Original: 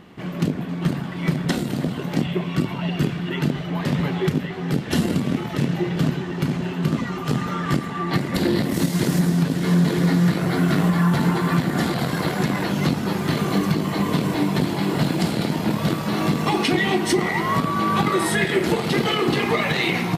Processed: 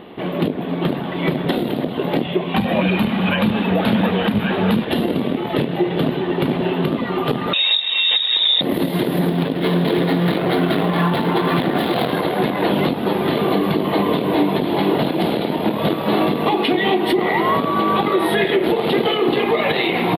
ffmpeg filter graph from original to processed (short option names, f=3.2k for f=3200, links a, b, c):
-filter_complex "[0:a]asettb=1/sr,asplit=3[a][b][c];[a]atrim=end=2.544[d];[b]atrim=start=2.54:end=4.85,asetpts=PTS-STARTPTS,afade=t=in:d=0.004:c=qsin,afade=t=out:st=2.306:d=0.004:c=qsin,acontrast=80,afreqshift=-360,highpass=120[e];[c]atrim=start=4.846[f];[d][e]acrossfade=d=0.004:c1=hsin:c2=qsin[g];[g][f]acrossfade=d=0.004:c1=qsin:c2=hsin,asettb=1/sr,asplit=3[h][i][j];[h]atrim=end=7.534[k];[i]atrim=start=7.53:end=8.61,asetpts=PTS-STARTPTS,afade=t=in:d=0.004:c=qsin,afade=t=out:st=1.076:d=0.004:c=qsin,lowshelf=f=120:g=12,lowpass=f=3.3k:t=q:w=0.5098,lowpass=f=3.3k:t=q:w=0.6013,lowpass=f=3.3k:t=q:w=0.9,lowpass=f=3.3k:t=q:w=2.563,afreqshift=-3900[l];[j]atrim=start=8.606[m];[k][l]acrossfade=d=0.004:c1=hsin:c2=qsin[n];[n][m]acrossfade=d=0.004:c1=qsin:c2=hsin,asettb=1/sr,asplit=3[o][p][q];[o]atrim=end=9.284[r];[p]atrim=start=9.28:end=12.13,asetpts=PTS-STARTPTS,afade=t=in:d=0.004:c=qsin,afade=t=out:st=2.846:d=0.004:c=qsin,aemphasis=mode=production:type=75fm,adynamicsmooth=sensitivity=5:basefreq=860[s];[q]atrim=start=12.126[t];[r][s]acrossfade=d=0.004:c1=hsin:c2=qsin[u];[u][t]acrossfade=d=0.004:c1=qsin:c2=hsin,firequalizer=gain_entry='entry(150,0);entry(240,7);entry(420,13);entry(720,12);entry(1400,4);entry(2200,6);entry(3600,10);entry(6100,-27);entry(11000,4)':delay=0.05:min_phase=1,alimiter=limit=-8dB:level=0:latency=1:release=228"